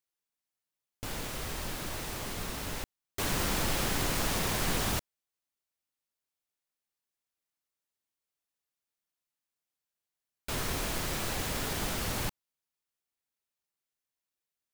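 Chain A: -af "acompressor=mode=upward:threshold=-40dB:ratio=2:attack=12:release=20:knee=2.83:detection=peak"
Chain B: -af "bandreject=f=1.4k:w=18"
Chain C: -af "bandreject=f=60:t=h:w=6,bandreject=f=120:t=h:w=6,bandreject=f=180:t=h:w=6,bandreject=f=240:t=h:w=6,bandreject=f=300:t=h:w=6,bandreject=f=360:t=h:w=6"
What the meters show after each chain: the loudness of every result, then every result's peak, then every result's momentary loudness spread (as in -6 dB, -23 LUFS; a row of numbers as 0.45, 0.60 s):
-33.0, -33.0, -33.0 LUFS; -15.5, -17.5, -18.0 dBFS; 9, 9, 9 LU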